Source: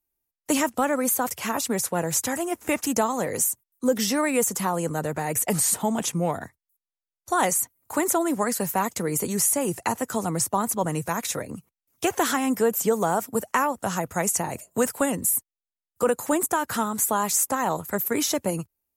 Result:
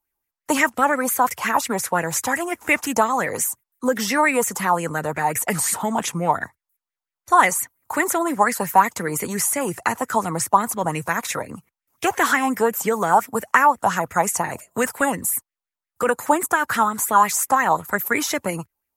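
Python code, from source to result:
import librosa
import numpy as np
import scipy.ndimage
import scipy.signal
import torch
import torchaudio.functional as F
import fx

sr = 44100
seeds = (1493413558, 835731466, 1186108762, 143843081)

y = fx.bell_lfo(x, sr, hz=5.7, low_hz=850.0, high_hz=2200.0, db=15)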